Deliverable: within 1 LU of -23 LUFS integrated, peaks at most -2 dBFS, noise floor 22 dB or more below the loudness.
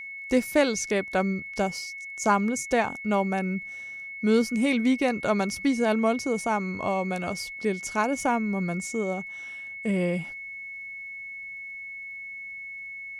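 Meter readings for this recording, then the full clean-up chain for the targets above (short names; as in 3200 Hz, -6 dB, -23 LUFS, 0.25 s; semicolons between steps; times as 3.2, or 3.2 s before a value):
ticks 18/s; steady tone 2200 Hz; tone level -36 dBFS; loudness -27.5 LUFS; peak -8.5 dBFS; loudness target -23.0 LUFS
-> de-click; notch 2200 Hz, Q 30; gain +4.5 dB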